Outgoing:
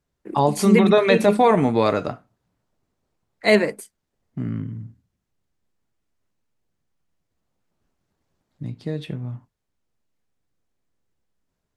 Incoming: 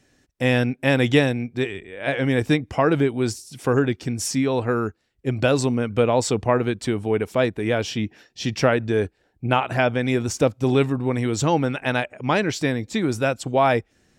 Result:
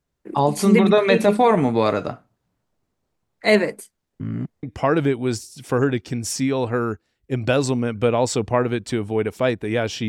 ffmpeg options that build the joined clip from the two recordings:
ffmpeg -i cue0.wav -i cue1.wav -filter_complex "[0:a]apad=whole_dur=10.08,atrim=end=10.08,asplit=2[link_01][link_02];[link_01]atrim=end=4.202[link_03];[link_02]atrim=start=4.198:end=4.632,asetpts=PTS-STARTPTS,areverse[link_04];[1:a]atrim=start=2.578:end=8.03[link_05];[link_03][link_04]acrossfade=duration=0.004:curve1=hsin:curve2=hsin[link_06];[link_06][link_05]acrossfade=duration=0.004:curve1=hsin:curve2=hsin" out.wav

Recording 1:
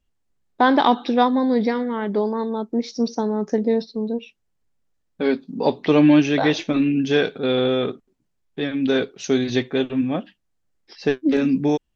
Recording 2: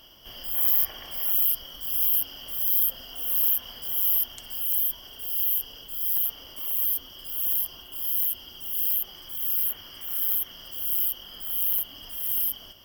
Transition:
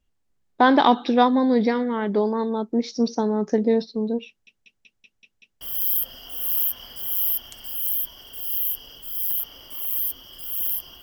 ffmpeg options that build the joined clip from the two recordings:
ffmpeg -i cue0.wav -i cue1.wav -filter_complex "[0:a]apad=whole_dur=11.02,atrim=end=11.02,asplit=7[link_01][link_02][link_03][link_04][link_05][link_06][link_07];[link_01]atrim=end=4.472[link_08];[link_02]atrim=start=4.278:end=4.472[link_09];[link_03]atrim=start=4.278:end=4.472[link_10];[link_04]atrim=start=4.278:end=4.472[link_11];[link_05]atrim=start=4.278:end=4.472[link_12];[link_06]atrim=start=4.278:end=4.472[link_13];[link_07]atrim=start=4.278:end=4.472[link_14];[1:a]atrim=start=2.468:end=7.88[link_15];[link_08][link_09]acrossfade=duration=0.004:curve1=hsin:curve2=hsin[link_16];[link_16][link_10]acrossfade=duration=0.004:curve1=hsin:curve2=hsin[link_17];[link_17][link_11]acrossfade=duration=0.004:curve1=hsin:curve2=hsin[link_18];[link_18][link_12]acrossfade=duration=0.004:curve1=hsin:curve2=hsin[link_19];[link_19][link_13]acrossfade=duration=0.004:curve1=hsin:curve2=hsin[link_20];[link_20][link_14]acrossfade=duration=0.004:curve1=hsin:curve2=hsin[link_21];[link_21][link_15]acrossfade=duration=0.004:curve1=hsin:curve2=hsin" out.wav

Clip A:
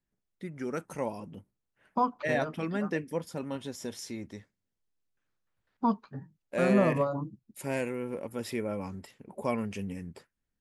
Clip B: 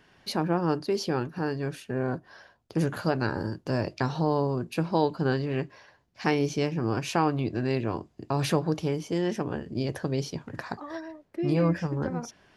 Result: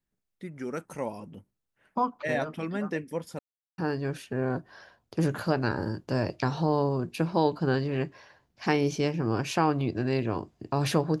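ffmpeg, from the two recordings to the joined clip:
ffmpeg -i cue0.wav -i cue1.wav -filter_complex "[0:a]apad=whole_dur=11.2,atrim=end=11.2,asplit=2[link_01][link_02];[link_01]atrim=end=3.39,asetpts=PTS-STARTPTS,afade=type=out:start_time=3.386:duration=0.004:curve=hsin[link_03];[link_02]atrim=start=3.39:end=3.78,asetpts=PTS-STARTPTS,volume=0[link_04];[1:a]atrim=start=1.36:end=8.78,asetpts=PTS-STARTPTS,afade=type=in:duration=0.004:curve=hsin[link_05];[link_03][link_04][link_05]concat=n=3:v=0:a=1" out.wav

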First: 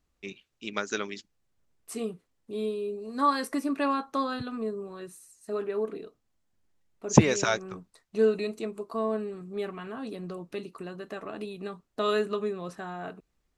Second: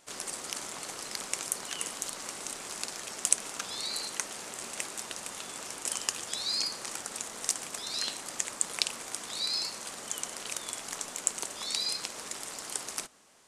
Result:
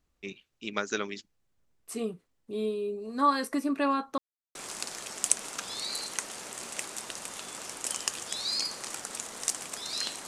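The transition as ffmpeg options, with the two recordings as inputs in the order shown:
ffmpeg -i cue0.wav -i cue1.wav -filter_complex "[0:a]apad=whole_dur=10.27,atrim=end=10.27,asplit=2[link_01][link_02];[link_01]atrim=end=4.18,asetpts=PTS-STARTPTS,afade=type=out:start_time=4.176:duration=0.004:curve=hsin[link_03];[link_02]atrim=start=4.18:end=4.55,asetpts=PTS-STARTPTS,volume=0[link_04];[1:a]atrim=start=2.56:end=8.28,asetpts=PTS-STARTPTS,afade=type=in:duration=0.004:curve=hsin[link_05];[link_03][link_04][link_05]concat=n=3:v=0:a=1" out.wav

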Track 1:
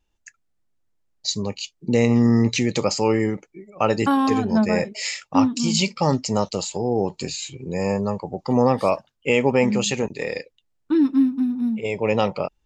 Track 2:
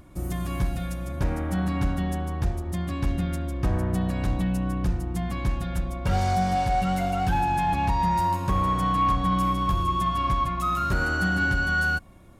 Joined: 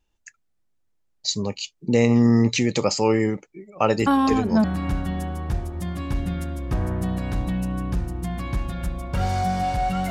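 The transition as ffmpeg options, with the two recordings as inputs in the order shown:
ffmpeg -i cue0.wav -i cue1.wav -filter_complex "[1:a]asplit=2[link_01][link_02];[0:a]apad=whole_dur=10.1,atrim=end=10.1,atrim=end=4.642[link_03];[link_02]atrim=start=1.558:end=7.02[link_04];[link_01]atrim=start=0.91:end=1.56,asetpts=PTS-STARTPTS,volume=-10dB,afade=type=in:duration=0.004:curve=hsin,afade=type=out:start_time=0.646:duration=0.004:curve=hsin,adelay=3990[link_05];[link_03][link_04]acrossfade=duration=0.004:curve1=hsin:curve2=hsin[link_06];[link_06][link_05]amix=inputs=2:normalize=0" out.wav

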